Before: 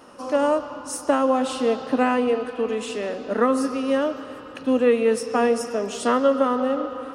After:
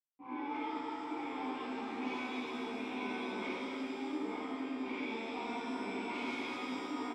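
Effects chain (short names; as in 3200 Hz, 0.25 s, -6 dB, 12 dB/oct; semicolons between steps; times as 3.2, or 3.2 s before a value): soft clip -17.5 dBFS, distortion -13 dB; tilt shelf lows -5.5 dB, about 680 Hz; spectral noise reduction 8 dB; bell 2300 Hz +12.5 dB 0.33 oct; notch 440 Hz, Q 12; tapped delay 79/893 ms -10/-6.5 dB; companded quantiser 2-bit; low-pass opened by the level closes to 640 Hz, open at -14.5 dBFS; vowel filter u; compressor, threshold -43 dBFS, peak gain reduction 13.5 dB; shimmer reverb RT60 2 s, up +7 st, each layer -8 dB, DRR -11 dB; gain -4.5 dB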